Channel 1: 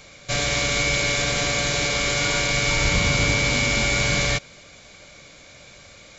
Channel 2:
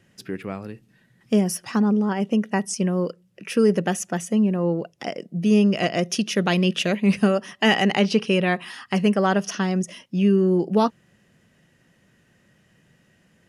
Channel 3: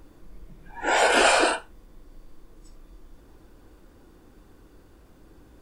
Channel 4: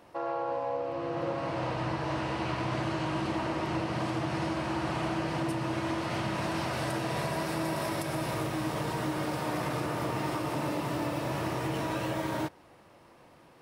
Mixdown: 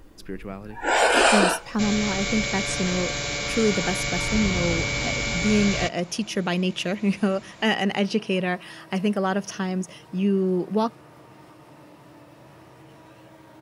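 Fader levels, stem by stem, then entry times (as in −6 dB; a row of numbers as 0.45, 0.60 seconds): −5.5, −4.0, +1.0, −16.5 decibels; 1.50, 0.00, 0.00, 1.15 seconds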